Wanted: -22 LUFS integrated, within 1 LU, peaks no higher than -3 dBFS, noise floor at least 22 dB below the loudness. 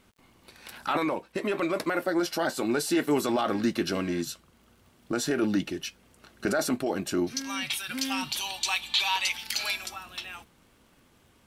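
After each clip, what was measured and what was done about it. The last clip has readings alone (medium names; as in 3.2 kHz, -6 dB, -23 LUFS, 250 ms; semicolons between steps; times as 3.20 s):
tick rate 48 per s; loudness -28.5 LUFS; peak level -13.5 dBFS; loudness target -22.0 LUFS
-> de-click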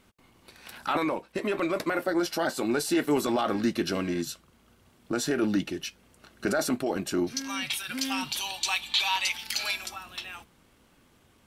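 tick rate 0.26 per s; loudness -29.0 LUFS; peak level -13.5 dBFS; loudness target -22.0 LUFS
-> trim +7 dB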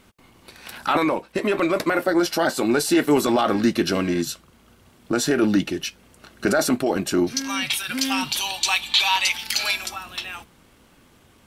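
loudness -22.0 LUFS; peak level -6.5 dBFS; noise floor -55 dBFS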